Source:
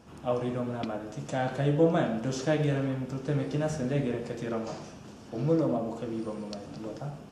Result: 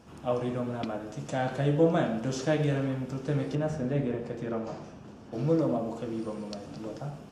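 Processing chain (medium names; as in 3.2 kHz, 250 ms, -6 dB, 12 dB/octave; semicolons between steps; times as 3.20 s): 3.55–5.33 s: treble shelf 2.9 kHz -10.5 dB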